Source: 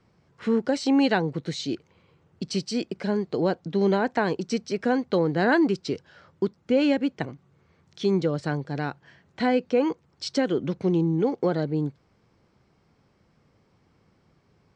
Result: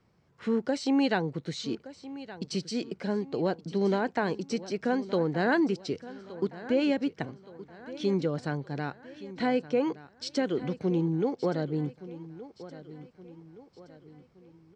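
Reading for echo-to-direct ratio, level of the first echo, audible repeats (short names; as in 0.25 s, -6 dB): -15.0 dB, -16.0 dB, 3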